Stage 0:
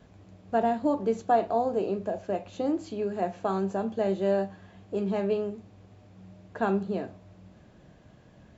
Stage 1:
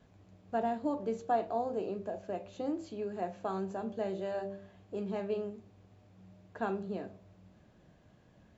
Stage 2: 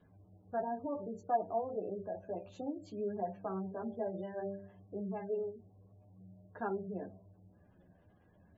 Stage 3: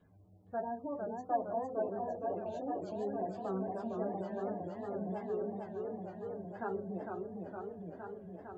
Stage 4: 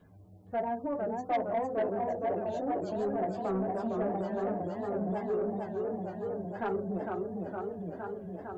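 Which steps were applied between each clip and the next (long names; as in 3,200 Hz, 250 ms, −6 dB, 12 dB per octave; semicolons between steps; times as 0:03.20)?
hum removal 65.68 Hz, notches 10; level −7 dB
gate on every frequency bin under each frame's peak −25 dB strong; multi-voice chorus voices 2, 0.64 Hz, delay 11 ms, depth 1.3 ms
feedback echo with a swinging delay time 460 ms, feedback 78%, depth 157 cents, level −4 dB; level −1.5 dB
soft clipping −30.5 dBFS, distortion −16 dB; level +7 dB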